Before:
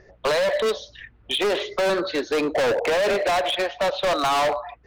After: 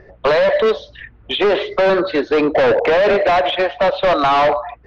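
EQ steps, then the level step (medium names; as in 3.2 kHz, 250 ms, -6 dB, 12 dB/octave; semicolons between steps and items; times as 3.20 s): distance through air 260 m; +8.5 dB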